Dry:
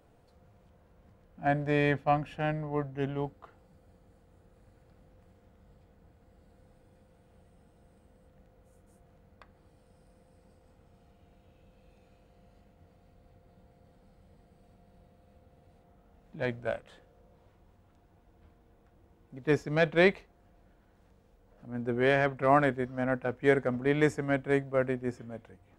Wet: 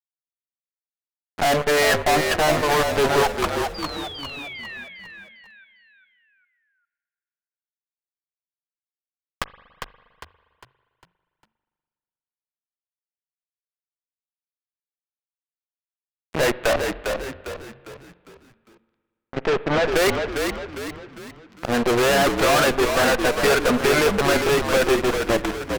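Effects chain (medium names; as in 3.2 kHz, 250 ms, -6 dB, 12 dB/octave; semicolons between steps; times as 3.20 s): local Wiener filter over 9 samples; reverb removal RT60 0.79 s; low-pass that closes with the level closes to 1.8 kHz, closed at -26.5 dBFS; high-pass 610 Hz 12 dB/octave; treble shelf 4.6 kHz -5.5 dB; in parallel at -2.5 dB: compression, threshold -43 dBFS, peak gain reduction 20 dB; on the sum: fuzz box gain 50 dB, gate -54 dBFS; 3.74–4.84 s: painted sound fall 1.6–4.9 kHz -40 dBFS; one-sided clip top -32 dBFS, bottom -15.5 dBFS; 16.73–19.91 s: distance through air 160 m; frequency-shifting echo 403 ms, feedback 43%, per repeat -46 Hz, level -5.5 dB; reverberation RT60 1.8 s, pre-delay 40 ms, DRR 16 dB; trim +3 dB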